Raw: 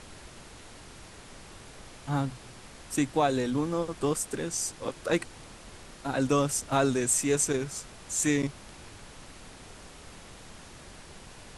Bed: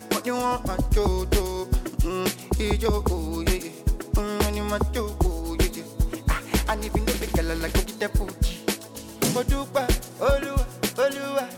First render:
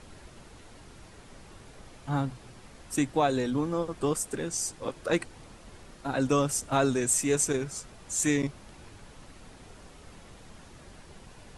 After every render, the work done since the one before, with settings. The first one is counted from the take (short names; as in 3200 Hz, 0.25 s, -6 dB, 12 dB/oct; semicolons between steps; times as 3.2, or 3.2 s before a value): denoiser 6 dB, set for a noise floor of -49 dBFS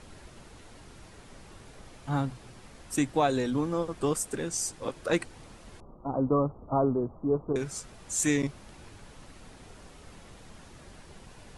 5.8–7.56 steep low-pass 1200 Hz 72 dB/oct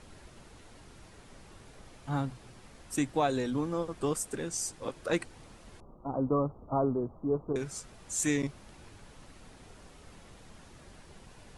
gain -3 dB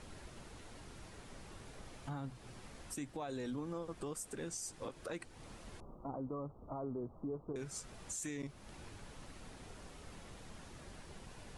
compressor 2:1, threshold -43 dBFS, peak gain reduction 11 dB; limiter -33.5 dBFS, peak gain reduction 6.5 dB